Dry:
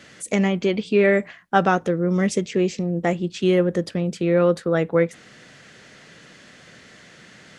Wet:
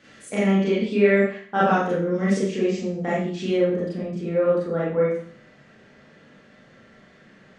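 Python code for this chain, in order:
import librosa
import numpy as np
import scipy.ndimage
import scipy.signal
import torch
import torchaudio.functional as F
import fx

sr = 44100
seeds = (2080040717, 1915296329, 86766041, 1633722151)

y = fx.lowpass(x, sr, hz=fx.steps((0.0, 3900.0), (3.52, 1000.0)), slope=6)
y = fx.rev_schroeder(y, sr, rt60_s=0.51, comb_ms=28, drr_db=-8.0)
y = F.gain(torch.from_numpy(y), -9.0).numpy()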